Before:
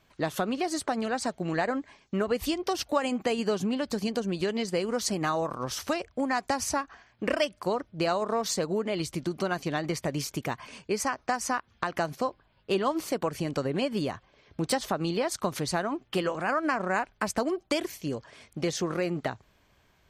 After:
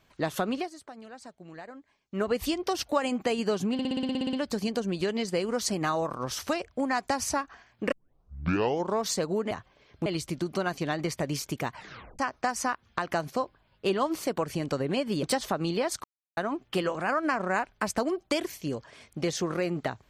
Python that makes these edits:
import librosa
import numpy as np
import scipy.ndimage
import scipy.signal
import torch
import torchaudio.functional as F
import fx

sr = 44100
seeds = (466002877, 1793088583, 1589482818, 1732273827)

y = fx.edit(x, sr, fx.fade_down_up(start_s=0.58, length_s=1.64, db=-16.0, fade_s=0.12),
    fx.stutter(start_s=3.73, slice_s=0.06, count=11),
    fx.tape_start(start_s=7.32, length_s=1.09),
    fx.tape_stop(start_s=10.59, length_s=0.45),
    fx.move(start_s=14.08, length_s=0.55, to_s=8.91),
    fx.silence(start_s=15.44, length_s=0.33), tone=tone)